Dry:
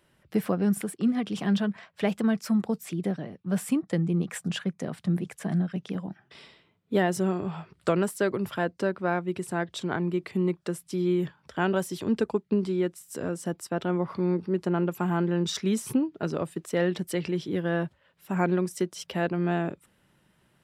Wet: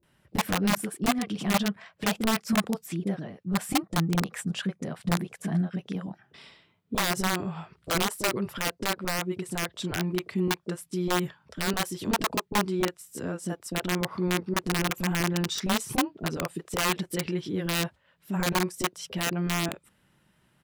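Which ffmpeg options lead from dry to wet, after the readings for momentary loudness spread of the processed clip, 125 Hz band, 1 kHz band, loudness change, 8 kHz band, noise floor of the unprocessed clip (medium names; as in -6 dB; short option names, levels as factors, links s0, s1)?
7 LU, -1.0 dB, +3.5 dB, -0.5 dB, +7.0 dB, -67 dBFS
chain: -filter_complex "[0:a]aeval=exprs='(mod(7.94*val(0)+1,2)-1)/7.94':c=same,acrossover=split=450[s0][s1];[s1]adelay=30[s2];[s0][s2]amix=inputs=2:normalize=0"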